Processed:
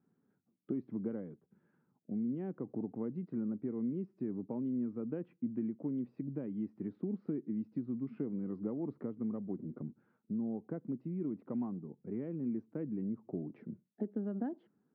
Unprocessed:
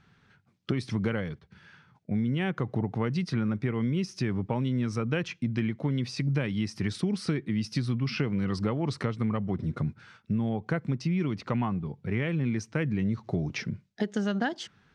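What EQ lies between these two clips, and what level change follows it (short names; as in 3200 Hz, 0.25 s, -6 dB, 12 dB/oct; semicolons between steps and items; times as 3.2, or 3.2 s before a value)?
ladder band-pass 320 Hz, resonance 40%; air absorption 190 m; +3.0 dB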